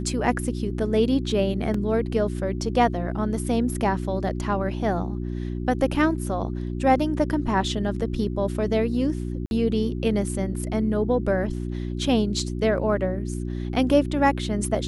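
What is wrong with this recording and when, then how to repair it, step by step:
hum 60 Hz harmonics 6 -29 dBFS
1.74 s: dropout 3.9 ms
9.46–9.51 s: dropout 51 ms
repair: de-hum 60 Hz, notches 6; interpolate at 1.74 s, 3.9 ms; interpolate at 9.46 s, 51 ms

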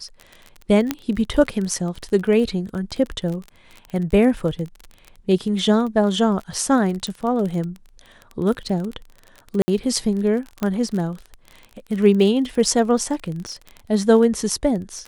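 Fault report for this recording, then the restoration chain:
crackle 28 per s -27 dBFS
0.91 s: pop -6 dBFS
7.07 s: pop
9.62–9.68 s: dropout 60 ms
10.63 s: pop -11 dBFS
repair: de-click; interpolate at 9.62 s, 60 ms

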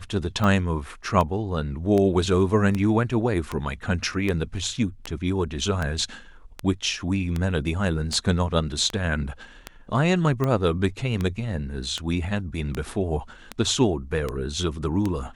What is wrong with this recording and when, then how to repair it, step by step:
tick 78 rpm -13 dBFS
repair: de-click

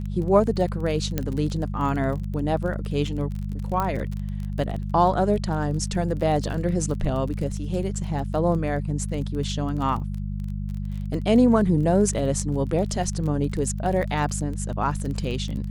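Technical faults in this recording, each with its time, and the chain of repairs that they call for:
crackle 24 per s -30 dBFS
hum 50 Hz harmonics 4 -29 dBFS
1.18 s: pop -10 dBFS
3.80 s: pop -13 dBFS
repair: de-click; de-hum 50 Hz, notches 4

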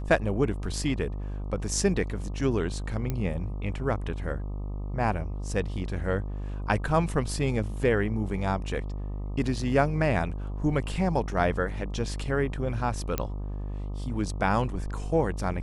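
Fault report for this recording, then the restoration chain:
buzz 50 Hz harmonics 25 -33 dBFS
3.10 s: pop -16 dBFS
13.18 s: pop -12 dBFS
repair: de-click; de-hum 50 Hz, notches 25

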